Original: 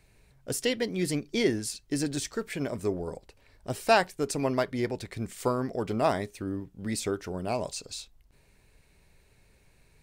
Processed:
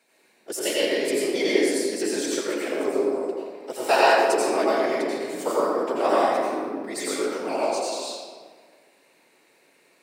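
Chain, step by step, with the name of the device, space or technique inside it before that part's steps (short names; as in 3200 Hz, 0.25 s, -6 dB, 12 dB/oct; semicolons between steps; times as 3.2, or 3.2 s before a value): whispering ghost (whisperiser; HPF 300 Hz 24 dB/oct; reverb RT60 1.7 s, pre-delay 78 ms, DRR -6.5 dB)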